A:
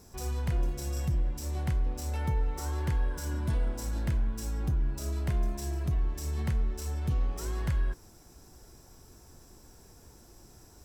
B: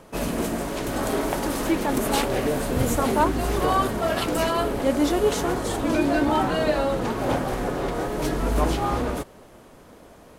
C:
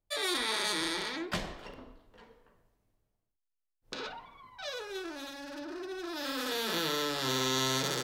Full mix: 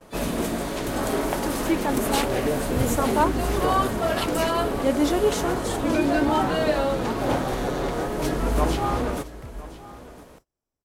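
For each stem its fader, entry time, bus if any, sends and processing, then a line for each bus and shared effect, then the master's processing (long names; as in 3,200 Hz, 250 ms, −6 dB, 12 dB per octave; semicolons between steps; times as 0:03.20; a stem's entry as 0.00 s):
0:08.42 −19.5 dB → 0:08.84 −11 dB, 1.75 s, no send, no echo send, no processing
0.0 dB, 0.00 s, no send, echo send −18.5 dB, no processing
−13.0 dB, 0.00 s, no send, no echo send, no processing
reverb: not used
echo: single-tap delay 1,012 ms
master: noise gate −51 dBFS, range −25 dB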